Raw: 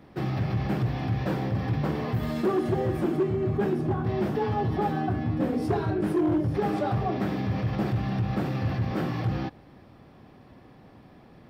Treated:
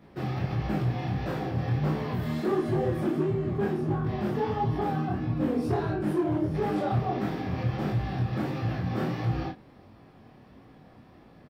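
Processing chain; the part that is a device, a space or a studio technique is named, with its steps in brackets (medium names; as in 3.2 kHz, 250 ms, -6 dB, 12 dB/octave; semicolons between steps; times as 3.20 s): double-tracked vocal (doubling 33 ms -3.5 dB; chorus 1.5 Hz, delay 18 ms, depth 7 ms)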